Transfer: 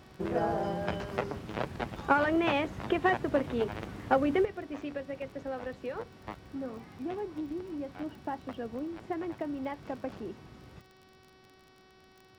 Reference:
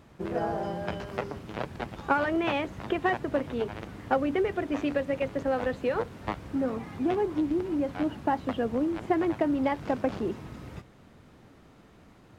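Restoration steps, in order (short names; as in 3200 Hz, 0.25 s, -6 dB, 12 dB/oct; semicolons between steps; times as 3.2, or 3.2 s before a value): de-click; de-hum 376.3 Hz, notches 15; gain correction +9.5 dB, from 4.45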